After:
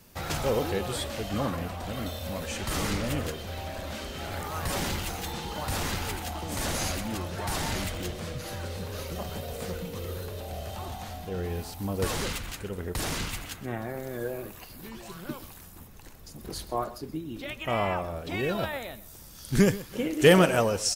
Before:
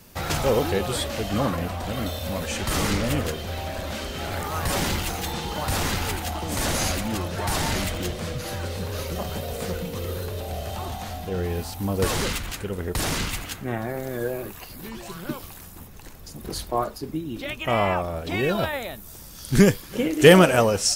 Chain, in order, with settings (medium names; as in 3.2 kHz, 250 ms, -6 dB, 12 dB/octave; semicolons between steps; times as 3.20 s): delay 127 ms -17 dB; trim -5.5 dB